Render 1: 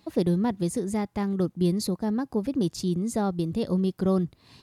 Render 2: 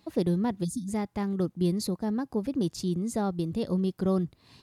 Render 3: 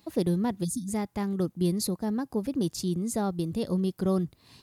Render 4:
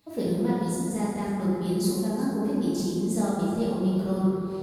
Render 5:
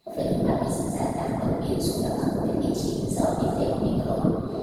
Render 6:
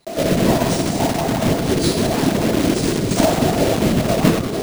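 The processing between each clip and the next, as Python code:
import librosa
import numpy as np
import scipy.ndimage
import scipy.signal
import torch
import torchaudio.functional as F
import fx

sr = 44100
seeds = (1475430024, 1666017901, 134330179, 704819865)

y1 = fx.spec_erase(x, sr, start_s=0.64, length_s=0.25, low_hz=320.0, high_hz=3300.0)
y1 = y1 * librosa.db_to_amplitude(-2.5)
y2 = fx.high_shelf(y1, sr, hz=8400.0, db=10.5)
y3 = y2 + 10.0 ** (-15.0 / 20.0) * np.pad(y2, (int(373 * sr / 1000.0), 0))[:len(y2)]
y3 = fx.rev_plate(y3, sr, seeds[0], rt60_s=2.7, hf_ratio=0.4, predelay_ms=0, drr_db=-9.0)
y3 = y3 * librosa.db_to_amplitude(-7.0)
y4 = fx.whisperise(y3, sr, seeds[1])
y4 = fx.small_body(y4, sr, hz=(660.0, 4000.0), ring_ms=40, db=13)
y5 = fx.block_float(y4, sr, bits=3)
y5 = np.repeat(y5[::3], 3)[:len(y5)]
y5 = y5 * librosa.db_to_amplitude(7.5)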